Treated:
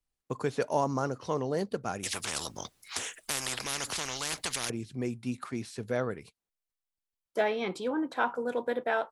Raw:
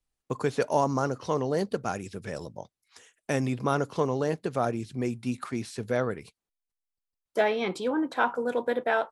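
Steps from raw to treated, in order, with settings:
0:02.03–0:04.70: every bin compressed towards the loudest bin 10 to 1
level −3.5 dB

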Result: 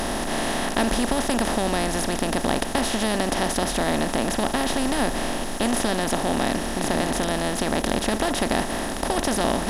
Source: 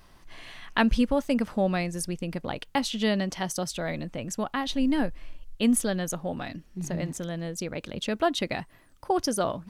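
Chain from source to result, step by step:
compressor on every frequency bin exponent 0.2
level −6 dB

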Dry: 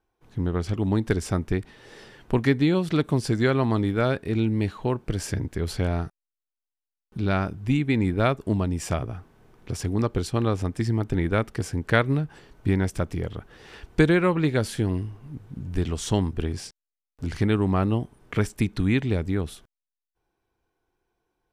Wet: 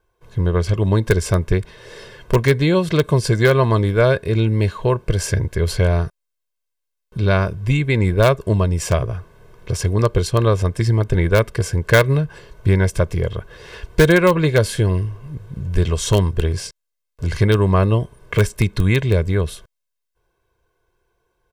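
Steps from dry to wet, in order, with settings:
comb filter 1.9 ms, depth 70%
in parallel at −11.5 dB: wrap-around overflow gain 10 dB
on the sum: level +4.5 dB

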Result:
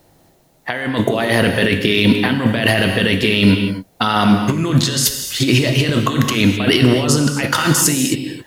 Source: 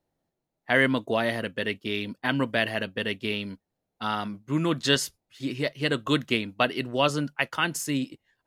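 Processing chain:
high-shelf EQ 4,700 Hz +5.5 dB
compressor whose output falls as the input rises −35 dBFS, ratio −1
reverb whose tail is shaped and stops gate 290 ms flat, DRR 5 dB
boost into a limiter +19.5 dB
level −1 dB

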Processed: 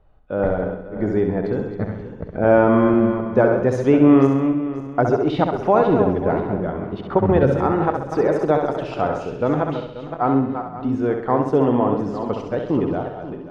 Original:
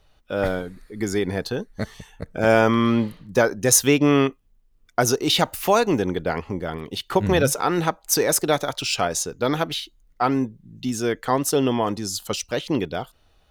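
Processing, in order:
feedback delay that plays each chunk backwards 267 ms, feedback 47%, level −8 dB
low-pass filter 1,100 Hz 12 dB per octave
on a send: flutter between parallel walls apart 11.3 metres, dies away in 0.64 s
on the sum: level +2.5 dB

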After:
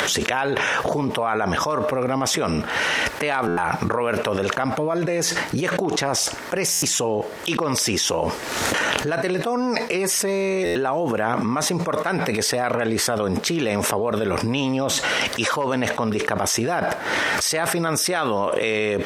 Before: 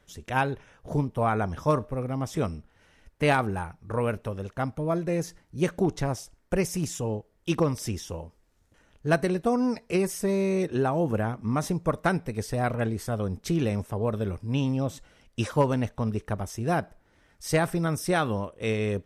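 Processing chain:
parametric band 9,400 Hz −3 dB 1.6 octaves
upward compression, threshold −31 dBFS
meter weighting curve A
buffer that repeats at 0:03.47/0:06.72/0:10.65, samples 512, times 8
envelope flattener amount 100%
level −2 dB

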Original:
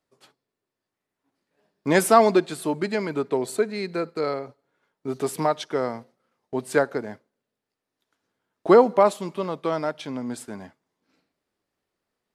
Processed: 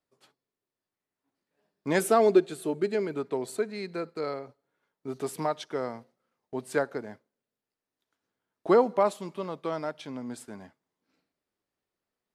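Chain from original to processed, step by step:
0:02.00–0:03.17: thirty-one-band graphic EQ 400 Hz +9 dB, 1,000 Hz −8 dB, 2,000 Hz −3 dB, 5,000 Hz −5 dB
level −6.5 dB

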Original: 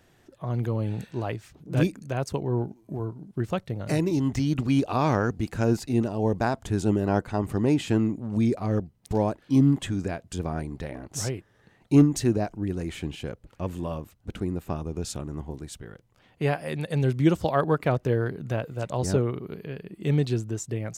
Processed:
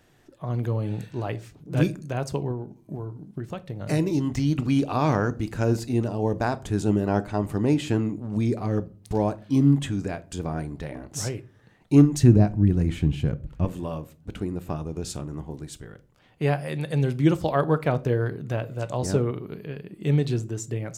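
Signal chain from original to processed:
0:02.51–0:03.82: downward compressor 5 to 1, threshold −30 dBFS, peak gain reduction 8.5 dB
0:12.23–0:13.65: bass and treble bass +13 dB, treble −3 dB
convolution reverb RT60 0.40 s, pre-delay 7 ms, DRR 13 dB

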